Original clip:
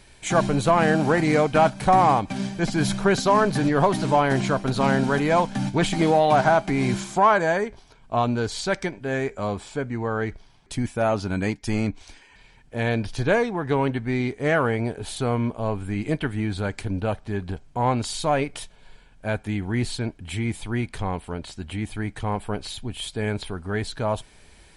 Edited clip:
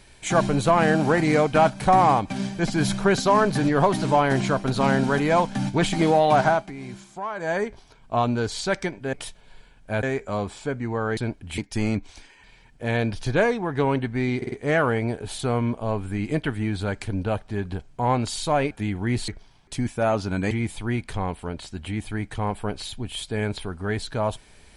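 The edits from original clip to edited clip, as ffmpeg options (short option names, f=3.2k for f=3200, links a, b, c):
-filter_complex "[0:a]asplit=13[a][b][c][d][e][f][g][h][i][j][k][l][m];[a]atrim=end=6.72,asetpts=PTS-STARTPTS,afade=t=out:st=6.45:d=0.27:silence=0.199526[n];[b]atrim=start=6.72:end=7.35,asetpts=PTS-STARTPTS,volume=-14dB[o];[c]atrim=start=7.35:end=9.132,asetpts=PTS-STARTPTS,afade=t=in:d=0.27:silence=0.199526[p];[d]atrim=start=18.478:end=19.382[q];[e]atrim=start=9.128:end=10.272[r];[f]atrim=start=19.948:end=20.362[s];[g]atrim=start=11.498:end=14.342[t];[h]atrim=start=14.288:end=14.342[u];[i]atrim=start=14.288:end=14.342[v];[j]atrim=start=14.288:end=18.482[w];[k]atrim=start=19.378:end=19.952[x];[l]atrim=start=10.268:end=11.502[y];[m]atrim=start=20.358[z];[n][o][p]concat=n=3:v=0:a=1[aa];[aa][q]acrossfade=d=0.004:c1=hsin:c2=hsin[ab];[ab][r]acrossfade=d=0.004:c1=hsin:c2=hsin[ac];[ac][s]acrossfade=d=0.004:c1=hsin:c2=hsin[ad];[ad][t]acrossfade=d=0.004:c1=hsin:c2=hsin[ae];[ae][u]acrossfade=d=0.004:c1=hsin:c2=hsin[af];[af][v]acrossfade=d=0.004:c1=hsin:c2=hsin[ag];[ag][w]acrossfade=d=0.004:c1=hsin:c2=hsin[ah];[ah][x]acrossfade=d=0.004:c1=hsin:c2=hsin[ai];[ai][y]acrossfade=d=0.004:c1=hsin:c2=hsin[aj];[aj][z]acrossfade=d=0.004:c1=hsin:c2=hsin"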